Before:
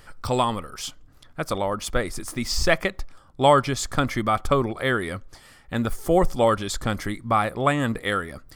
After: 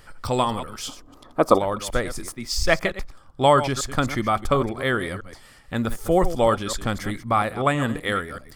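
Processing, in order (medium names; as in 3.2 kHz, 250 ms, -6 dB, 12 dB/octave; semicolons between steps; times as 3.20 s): chunks repeated in reverse 127 ms, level -12 dB; 0.89–1.59 s: time-frequency box 210–1300 Hz +12 dB; 2.32–2.83 s: three bands expanded up and down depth 70%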